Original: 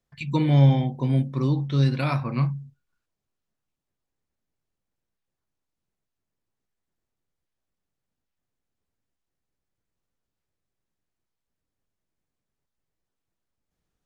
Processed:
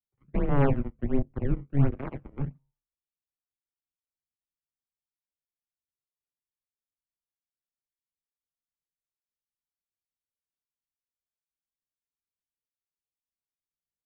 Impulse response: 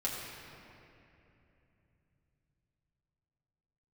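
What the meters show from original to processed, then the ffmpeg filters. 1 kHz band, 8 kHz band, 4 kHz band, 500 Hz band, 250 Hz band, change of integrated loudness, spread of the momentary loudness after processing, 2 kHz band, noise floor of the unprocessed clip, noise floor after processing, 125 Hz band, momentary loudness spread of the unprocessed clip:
−5.0 dB, can't be measured, below −20 dB, −1.0 dB, −5.5 dB, −7.0 dB, 12 LU, −6.5 dB, −84 dBFS, below −85 dBFS, −8.5 dB, 9 LU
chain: -filter_complex "[0:a]tiltshelf=frequency=970:gain=8.5,flanger=delay=9.4:depth=5.1:regen=-88:speed=0.38:shape=triangular,aeval=exprs='0.596*(cos(1*acos(clip(val(0)/0.596,-1,1)))-cos(1*PI/2))+0.0944*(cos(7*acos(clip(val(0)/0.596,-1,1)))-cos(7*PI/2))':channel_layout=same,acrossover=split=310|830[link_01][link_02][link_03];[link_03]acrusher=samples=26:mix=1:aa=0.000001:lfo=1:lforange=41.6:lforate=1.4[link_04];[link_01][link_02][link_04]amix=inputs=3:normalize=0,highpass=frequency=250:width_type=q:width=0.5412,highpass=frequency=250:width_type=q:width=1.307,lowpass=frequency=2700:width_type=q:width=0.5176,lowpass=frequency=2700:width_type=q:width=0.7071,lowpass=frequency=2700:width_type=q:width=1.932,afreqshift=-280,volume=2dB"

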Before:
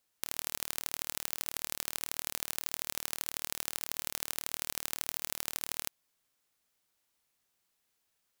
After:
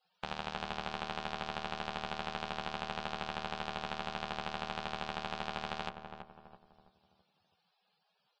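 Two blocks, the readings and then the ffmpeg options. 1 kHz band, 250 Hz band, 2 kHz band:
+10.5 dB, +8.0 dB, +2.5 dB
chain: -filter_complex "[0:a]asplit=2[link_01][link_02];[link_02]acompressor=threshold=-49dB:ratio=6,volume=0.5dB[link_03];[link_01][link_03]amix=inputs=2:normalize=0,bandreject=frequency=120:width_type=h:width=4,bandreject=frequency=240:width_type=h:width=4,bandreject=frequency=360:width_type=h:width=4,bandreject=frequency=480:width_type=h:width=4,bandreject=frequency=600:width_type=h:width=4,bandreject=frequency=720:width_type=h:width=4,bandreject=frequency=840:width_type=h:width=4,bandreject=frequency=960:width_type=h:width=4,bandreject=frequency=1080:width_type=h:width=4,bandreject=frequency=1200:width_type=h:width=4,bandreject=frequency=1320:width_type=h:width=4,bandreject=frequency=1440:width_type=h:width=4,bandreject=frequency=1560:width_type=h:width=4,bandreject=frequency=1680:width_type=h:width=4,bandreject=frequency=1800:width_type=h:width=4,bandreject=frequency=1920:width_type=h:width=4,bandreject=frequency=2040:width_type=h:width=4,bandreject=frequency=2160:width_type=h:width=4,bandreject=frequency=2280:width_type=h:width=4,aeval=exprs='0.75*(cos(1*acos(clip(val(0)/0.75,-1,1)))-cos(1*PI/2))+0.15*(cos(3*acos(clip(val(0)/0.75,-1,1)))-cos(3*PI/2))':channel_layout=same,acrossover=split=3500[link_04][link_05];[link_05]acompressor=threshold=-42dB:ratio=4:attack=1:release=60[link_06];[link_04][link_06]amix=inputs=2:normalize=0,asplit=2[link_07][link_08];[link_08]adelay=12,volume=-2dB[link_09];[link_07][link_09]amix=inputs=2:normalize=0,asoftclip=type=tanh:threshold=-26dB,lowpass=frequency=5100:width=0.5412,lowpass=frequency=5100:width=1.3066,equalizer=frequency=280:width=3:gain=-11.5,afftfilt=real='re*gte(hypot(re,im),0.0000794)':imag='im*gte(hypot(re,im),0.0000794)':win_size=1024:overlap=0.75,equalizer=frequency=200:width_type=o:width=0.33:gain=12,equalizer=frequency=800:width_type=o:width=0.33:gain=8,equalizer=frequency=2000:width_type=o:width=0.33:gain=-11,asplit=2[link_10][link_11];[link_11]adelay=330,lowpass=frequency=1200:poles=1,volume=-6dB,asplit=2[link_12][link_13];[link_13]adelay=330,lowpass=frequency=1200:poles=1,volume=0.45,asplit=2[link_14][link_15];[link_15]adelay=330,lowpass=frequency=1200:poles=1,volume=0.45,asplit=2[link_16][link_17];[link_17]adelay=330,lowpass=frequency=1200:poles=1,volume=0.45,asplit=2[link_18][link_19];[link_19]adelay=330,lowpass=frequency=1200:poles=1,volume=0.45[link_20];[link_12][link_14][link_16][link_18][link_20]amix=inputs=5:normalize=0[link_21];[link_10][link_21]amix=inputs=2:normalize=0,volume=8.5dB" -ar 22050 -c:a libvorbis -b:a 32k

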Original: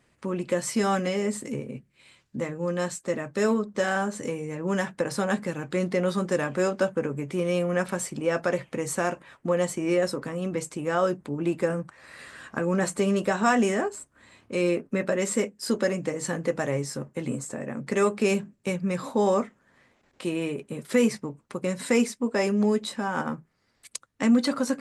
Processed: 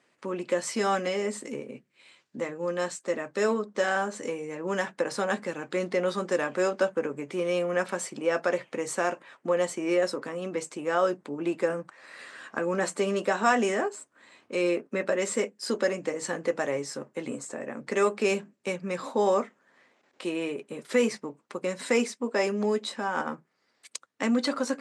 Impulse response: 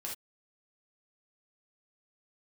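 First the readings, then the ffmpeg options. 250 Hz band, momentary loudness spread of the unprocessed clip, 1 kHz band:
−5.5 dB, 11 LU, 0.0 dB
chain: -af "highpass=300,lowpass=7900"

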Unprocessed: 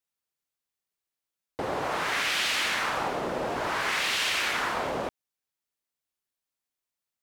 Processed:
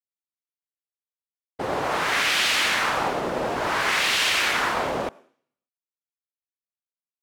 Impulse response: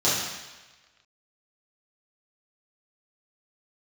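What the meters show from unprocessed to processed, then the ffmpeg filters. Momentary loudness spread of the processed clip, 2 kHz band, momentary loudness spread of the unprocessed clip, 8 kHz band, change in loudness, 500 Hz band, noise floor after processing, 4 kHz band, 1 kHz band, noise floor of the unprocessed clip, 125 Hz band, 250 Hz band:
9 LU, +5.5 dB, 9 LU, +5.5 dB, +5.5 dB, +4.5 dB, below −85 dBFS, +5.5 dB, +5.0 dB, below −85 dBFS, +4.5 dB, +4.5 dB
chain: -filter_complex "[0:a]agate=range=-33dB:threshold=-28dB:ratio=3:detection=peak,asplit=2[link_01][link_02];[1:a]atrim=start_sample=2205,asetrate=83790,aresample=44100,adelay=83[link_03];[link_02][link_03]afir=irnorm=-1:irlink=0,volume=-35dB[link_04];[link_01][link_04]amix=inputs=2:normalize=0,volume=5.5dB"

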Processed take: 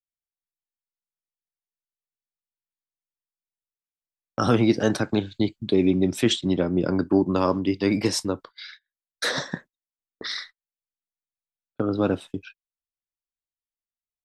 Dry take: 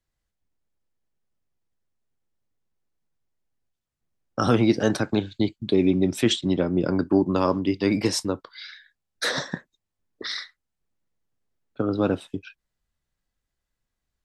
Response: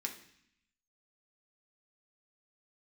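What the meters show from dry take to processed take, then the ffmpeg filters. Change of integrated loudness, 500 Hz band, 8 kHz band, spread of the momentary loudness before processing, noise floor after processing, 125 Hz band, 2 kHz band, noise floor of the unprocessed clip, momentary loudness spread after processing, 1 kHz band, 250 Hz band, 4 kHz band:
0.0 dB, 0.0 dB, 0.0 dB, 16 LU, below −85 dBFS, 0.0 dB, 0.0 dB, −83 dBFS, 16 LU, 0.0 dB, 0.0 dB, 0.0 dB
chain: -af "agate=range=-27dB:threshold=-42dB:ratio=16:detection=peak"

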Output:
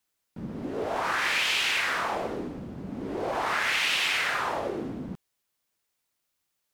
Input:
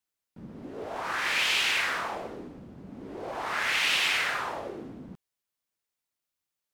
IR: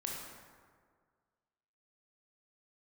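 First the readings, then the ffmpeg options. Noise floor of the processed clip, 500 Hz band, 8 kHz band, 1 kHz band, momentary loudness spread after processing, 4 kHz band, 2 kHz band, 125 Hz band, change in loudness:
−80 dBFS, +5.5 dB, +0.5 dB, +3.5 dB, 15 LU, 0.0 dB, +1.0 dB, +6.5 dB, 0.0 dB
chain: -af "acompressor=threshold=-33dB:ratio=3,volume=7.5dB"

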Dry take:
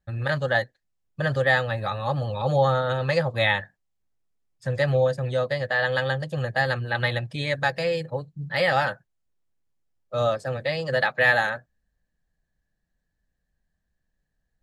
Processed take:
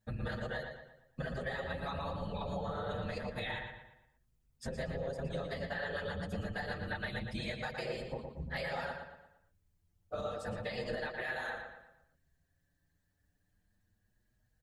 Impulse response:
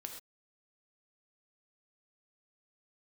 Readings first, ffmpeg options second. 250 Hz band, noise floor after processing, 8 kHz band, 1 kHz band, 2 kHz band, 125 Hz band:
−8.5 dB, −78 dBFS, can't be measured, −15.0 dB, −16.0 dB, −15.0 dB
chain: -filter_complex "[0:a]afftfilt=real='hypot(re,im)*cos(2*PI*random(0))':imag='hypot(re,im)*sin(2*PI*random(1))':win_size=512:overlap=0.75,alimiter=limit=-24dB:level=0:latency=1:release=203,highshelf=frequency=7500:gain=6.5,acompressor=threshold=-46dB:ratio=3,asplit=2[link_01][link_02];[link_02]adelay=116,lowpass=frequency=4400:poles=1,volume=-5.5dB,asplit=2[link_03][link_04];[link_04]adelay=116,lowpass=frequency=4400:poles=1,volume=0.44,asplit=2[link_05][link_06];[link_06]adelay=116,lowpass=frequency=4400:poles=1,volume=0.44,asplit=2[link_07][link_08];[link_08]adelay=116,lowpass=frequency=4400:poles=1,volume=0.44,asplit=2[link_09][link_10];[link_10]adelay=116,lowpass=frequency=4400:poles=1,volume=0.44[link_11];[link_03][link_05][link_07][link_09][link_11]amix=inputs=5:normalize=0[link_12];[link_01][link_12]amix=inputs=2:normalize=0,asplit=2[link_13][link_14];[link_14]adelay=6.2,afreqshift=0.28[link_15];[link_13][link_15]amix=inputs=2:normalize=1,volume=8.5dB"

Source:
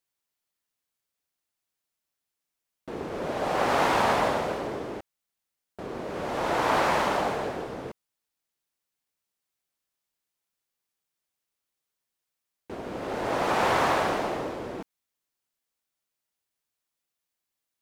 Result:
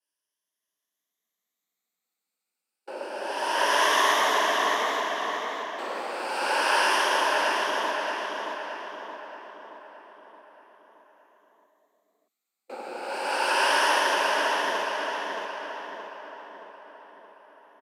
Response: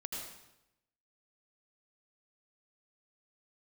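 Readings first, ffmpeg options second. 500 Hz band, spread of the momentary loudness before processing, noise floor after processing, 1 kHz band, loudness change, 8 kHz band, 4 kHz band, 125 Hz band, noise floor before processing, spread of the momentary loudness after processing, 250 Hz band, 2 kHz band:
−0.5 dB, 16 LU, below −85 dBFS, +3.0 dB, +1.5 dB, +8.5 dB, +9.5 dB, below −20 dB, below −85 dBFS, 20 LU, −6.5 dB, +7.0 dB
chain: -filter_complex "[0:a]afftfilt=real='re*pow(10,12/40*sin(2*PI*(1.1*log(max(b,1)*sr/1024/100)/log(2)-(0.29)*(pts-256)/sr)))':imag='im*pow(10,12/40*sin(2*PI*(1.1*log(max(b,1)*sr/1024/100)/log(2)-(0.29)*(pts-256)/sr)))':win_size=1024:overlap=0.75,highshelf=frequency=3300:gain=2,acrossover=split=170|4300[link_01][link_02][link_03];[link_01]alimiter=level_in=15dB:limit=-24dB:level=0:latency=1:release=26,volume=-15dB[link_04];[link_04][link_02][link_03]amix=inputs=3:normalize=0,aresample=32000,aresample=44100,asplit=2[link_05][link_06];[link_06]adelay=623,lowpass=frequency=4900:poles=1,volume=-3dB,asplit=2[link_07][link_08];[link_08]adelay=623,lowpass=frequency=4900:poles=1,volume=0.54,asplit=2[link_09][link_10];[link_10]adelay=623,lowpass=frequency=4900:poles=1,volume=0.54,asplit=2[link_11][link_12];[link_12]adelay=623,lowpass=frequency=4900:poles=1,volume=0.54,asplit=2[link_13][link_14];[link_14]adelay=623,lowpass=frequency=4900:poles=1,volume=0.54,asplit=2[link_15][link_16];[link_16]adelay=623,lowpass=frequency=4900:poles=1,volume=0.54,asplit=2[link_17][link_18];[link_18]adelay=623,lowpass=frequency=4900:poles=1,volume=0.54[link_19];[link_07][link_09][link_11][link_13][link_15][link_17][link_19]amix=inputs=7:normalize=0[link_20];[link_05][link_20]amix=inputs=2:normalize=0,afreqshift=170,adynamicequalizer=threshold=0.0141:dfrequency=1700:dqfactor=0.7:tfrequency=1700:tqfactor=0.7:attack=5:release=100:ratio=0.375:range=3.5:mode=boostabove:tftype=highshelf,volume=-3dB"

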